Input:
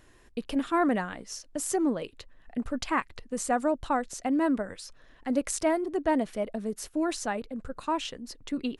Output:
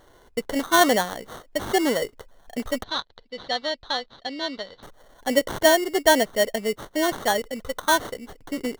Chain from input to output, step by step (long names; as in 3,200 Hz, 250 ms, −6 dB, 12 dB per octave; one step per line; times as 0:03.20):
flat-topped bell 680 Hz +9.5 dB
sample-rate reduction 2,500 Hz, jitter 0%
0:02.83–0:04.83: transistor ladder low-pass 4,400 Hz, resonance 70%
level +1 dB